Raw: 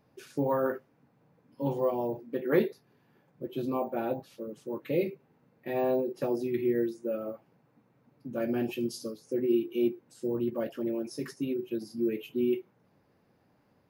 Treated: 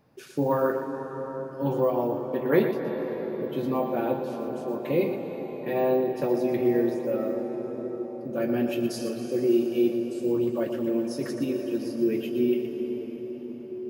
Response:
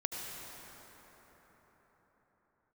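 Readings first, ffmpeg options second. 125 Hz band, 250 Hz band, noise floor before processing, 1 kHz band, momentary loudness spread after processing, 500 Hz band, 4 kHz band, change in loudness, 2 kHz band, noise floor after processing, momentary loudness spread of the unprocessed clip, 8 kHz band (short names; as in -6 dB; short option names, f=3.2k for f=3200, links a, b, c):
+5.0 dB, +5.5 dB, -68 dBFS, +5.5 dB, 10 LU, +5.5 dB, +4.5 dB, +4.5 dB, +4.5 dB, -38 dBFS, 11 LU, n/a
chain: -filter_complex "[0:a]asplit=2[a][b];[1:a]atrim=start_sample=2205,asetrate=27342,aresample=44100,adelay=119[c];[b][c]afir=irnorm=-1:irlink=0,volume=-10dB[d];[a][d]amix=inputs=2:normalize=0,volume=3.5dB"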